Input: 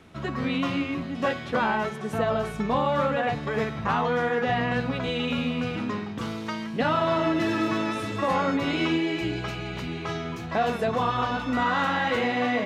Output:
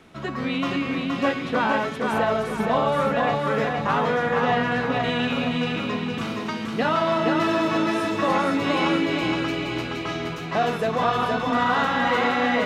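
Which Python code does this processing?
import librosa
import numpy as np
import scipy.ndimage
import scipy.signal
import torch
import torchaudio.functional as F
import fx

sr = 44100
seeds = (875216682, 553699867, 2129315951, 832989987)

y = fx.peak_eq(x, sr, hz=72.0, db=-7.5, octaves=1.9)
y = fx.echo_feedback(y, sr, ms=470, feedback_pct=42, wet_db=-3.5)
y = y * librosa.db_to_amplitude(2.0)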